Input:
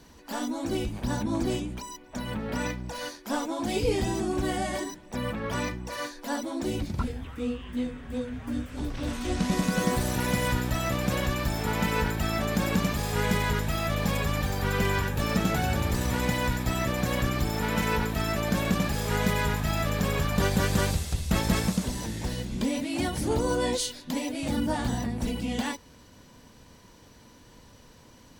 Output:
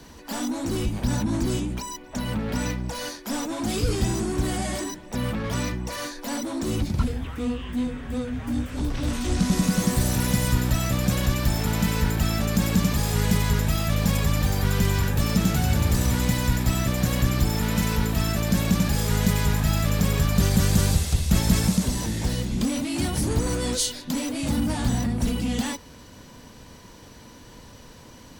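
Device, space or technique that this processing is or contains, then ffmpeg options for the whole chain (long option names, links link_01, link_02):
one-band saturation: -filter_complex "[0:a]acrossover=split=240|4200[link_01][link_02][link_03];[link_02]asoftclip=type=tanh:threshold=-38dB[link_04];[link_01][link_04][link_03]amix=inputs=3:normalize=0,volume=7dB"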